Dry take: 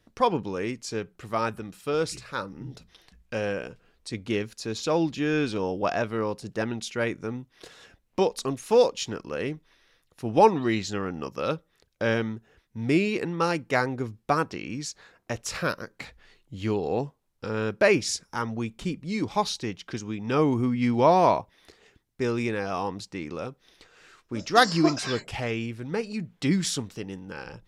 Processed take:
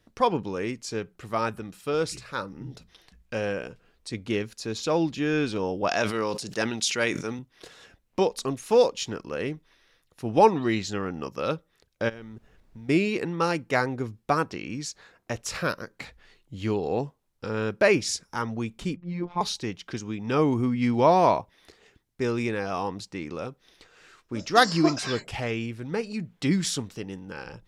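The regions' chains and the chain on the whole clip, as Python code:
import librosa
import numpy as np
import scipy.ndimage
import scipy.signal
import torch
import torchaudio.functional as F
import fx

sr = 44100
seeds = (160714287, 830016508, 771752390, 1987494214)

y = fx.chain(x, sr, fx.highpass(hz=170.0, slope=6),
    fx.peak_eq(hz=6100.0, db=10.5, octaves=2.6),
    fx.sustainer(db_per_s=71.0), at=(5.89, 7.39))
y = fx.level_steps(y, sr, step_db=21, at=(12.08, 12.88), fade=0.02)
y = fx.dmg_noise_colour(y, sr, seeds[0], colour='brown', level_db=-58.0, at=(12.08, 12.88), fade=0.02)
y = fx.chain(y, sr, fx.lowpass(hz=1800.0, slope=12),
    fx.robotise(hz=175.0), at=(18.96, 19.41))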